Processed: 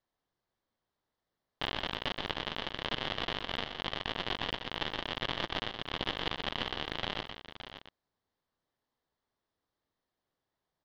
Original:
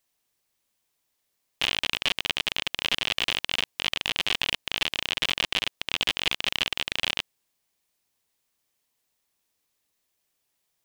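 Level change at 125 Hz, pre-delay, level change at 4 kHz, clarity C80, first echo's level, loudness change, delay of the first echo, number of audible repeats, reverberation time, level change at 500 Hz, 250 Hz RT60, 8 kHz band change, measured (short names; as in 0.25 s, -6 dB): +1.0 dB, none, -10.5 dB, none, -8.0 dB, -9.5 dB, 0.123 s, 3, none, 0.0 dB, none, -20.5 dB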